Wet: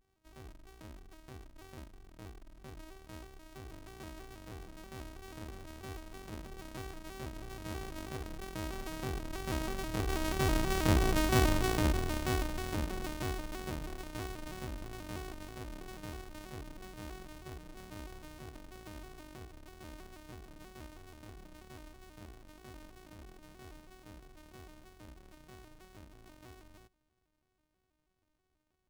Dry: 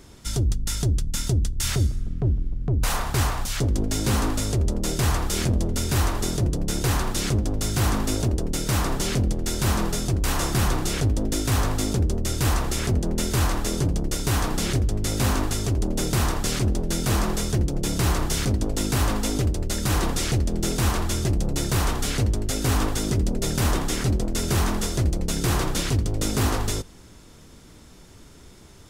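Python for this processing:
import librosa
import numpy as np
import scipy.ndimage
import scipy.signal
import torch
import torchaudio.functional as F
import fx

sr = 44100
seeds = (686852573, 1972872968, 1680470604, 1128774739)

y = np.r_[np.sort(x[:len(x) // 128 * 128].reshape(-1, 128), axis=1).ravel(), x[len(x) // 128 * 128:]]
y = fx.doppler_pass(y, sr, speed_mps=5, closest_m=3.1, pass_at_s=11.21)
y = fx.vibrato_shape(y, sr, shape='square', rate_hz=3.1, depth_cents=160.0)
y = F.gain(torch.from_numpy(y), -4.5).numpy()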